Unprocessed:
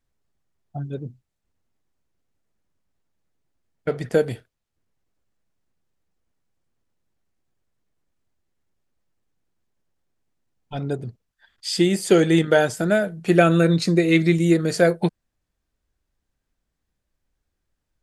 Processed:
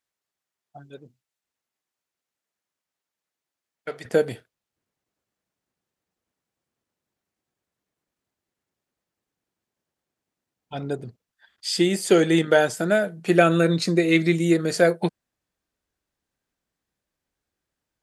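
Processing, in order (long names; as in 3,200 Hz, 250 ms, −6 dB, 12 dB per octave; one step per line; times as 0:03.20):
high-pass filter 1,200 Hz 6 dB per octave, from 0:04.05 220 Hz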